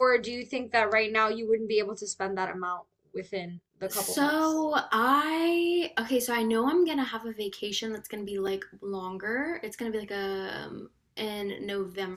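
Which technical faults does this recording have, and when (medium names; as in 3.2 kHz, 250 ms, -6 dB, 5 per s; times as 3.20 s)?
8.47–8.48 s: dropout 5.7 ms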